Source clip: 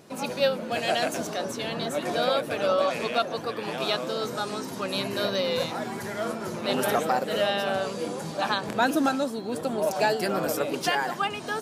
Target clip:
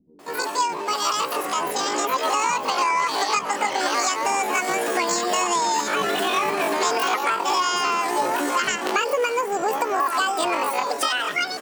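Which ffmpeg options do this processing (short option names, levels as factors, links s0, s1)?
-filter_complex "[0:a]adynamicequalizer=threshold=0.00158:dfrequency=7100:dqfactor=2.6:tfrequency=7100:tqfactor=2.6:attack=5:release=100:ratio=0.375:range=3.5:mode=cutabove:tftype=bell,dynaudnorm=f=420:g=11:m=4.47,asplit=2[s0][s1];[s1]alimiter=limit=0.237:level=0:latency=1:release=464,volume=0.891[s2];[s0][s2]amix=inputs=2:normalize=0,acompressor=threshold=0.126:ratio=8,asetrate=78577,aresample=44100,atempo=0.561231,acrossover=split=220[s3][s4];[s4]adelay=190[s5];[s3][s5]amix=inputs=2:normalize=0"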